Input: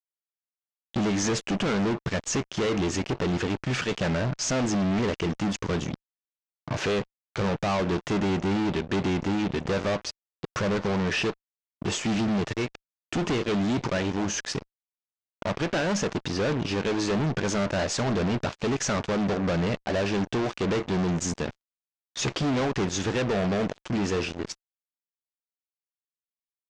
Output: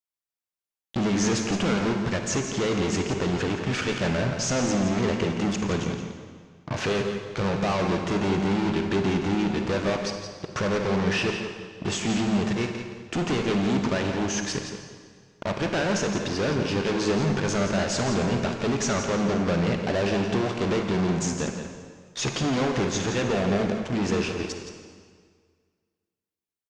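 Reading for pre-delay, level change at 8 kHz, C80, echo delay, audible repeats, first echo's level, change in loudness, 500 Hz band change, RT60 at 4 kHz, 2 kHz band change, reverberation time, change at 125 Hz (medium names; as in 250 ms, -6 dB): 37 ms, +1.5 dB, 4.5 dB, 170 ms, 1, -9.5 dB, +1.5 dB, +1.5 dB, 1.6 s, +1.5 dB, 1.8 s, +1.5 dB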